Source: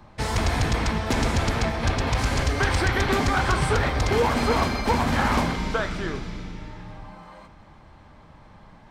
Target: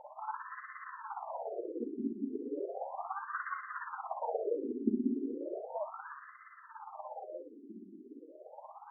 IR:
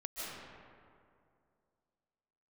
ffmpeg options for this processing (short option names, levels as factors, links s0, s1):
-filter_complex "[0:a]tiltshelf=f=1200:g=8,acompressor=threshold=0.0355:ratio=5,tremolo=f=17:d=0.85,asplit=2[s0][s1];[1:a]atrim=start_sample=2205,afade=t=out:st=0.24:d=0.01,atrim=end_sample=11025,adelay=36[s2];[s1][s2]afir=irnorm=-1:irlink=0,volume=0.596[s3];[s0][s3]amix=inputs=2:normalize=0,afftfilt=real='re*between(b*sr/1024,290*pow(1500/290,0.5+0.5*sin(2*PI*0.35*pts/sr))/1.41,290*pow(1500/290,0.5+0.5*sin(2*PI*0.35*pts/sr))*1.41)':imag='im*between(b*sr/1024,290*pow(1500/290,0.5+0.5*sin(2*PI*0.35*pts/sr))/1.41,290*pow(1500/290,0.5+0.5*sin(2*PI*0.35*pts/sr))*1.41)':win_size=1024:overlap=0.75,volume=1.88"